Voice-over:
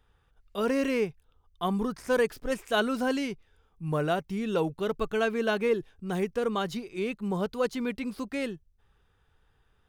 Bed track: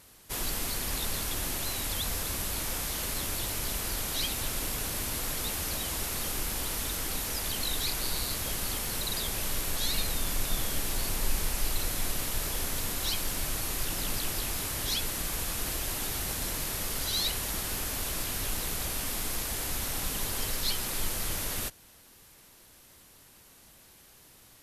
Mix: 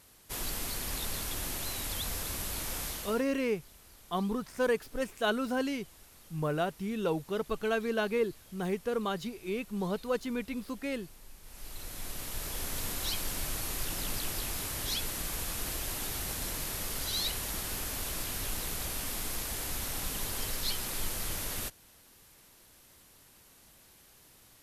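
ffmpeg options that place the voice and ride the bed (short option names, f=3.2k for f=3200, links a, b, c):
-filter_complex "[0:a]adelay=2500,volume=-3.5dB[a];[1:a]volume=17dB,afade=t=out:st=2.87:d=0.38:silence=0.1,afade=t=in:st=11.42:d=1.44:silence=0.0944061[b];[a][b]amix=inputs=2:normalize=0"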